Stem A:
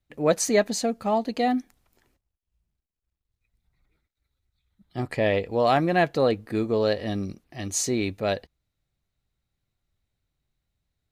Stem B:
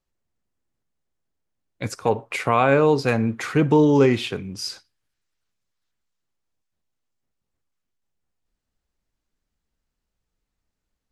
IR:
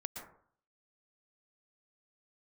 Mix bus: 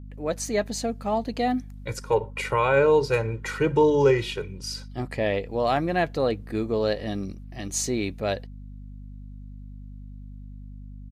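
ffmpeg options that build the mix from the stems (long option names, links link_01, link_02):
-filter_complex "[0:a]dynaudnorm=framelen=130:gausssize=9:maxgain=6.5dB,volume=-7.5dB[link_01];[1:a]bandreject=frequency=50:width_type=h:width=6,bandreject=frequency=100:width_type=h:width=6,bandreject=frequency=150:width_type=h:width=6,aecho=1:1:2.1:0.88,adelay=50,volume=-5.5dB[link_02];[link_01][link_02]amix=inputs=2:normalize=0,aeval=exprs='val(0)+0.0112*(sin(2*PI*50*n/s)+sin(2*PI*2*50*n/s)/2+sin(2*PI*3*50*n/s)/3+sin(2*PI*4*50*n/s)/4+sin(2*PI*5*50*n/s)/5)':channel_layout=same"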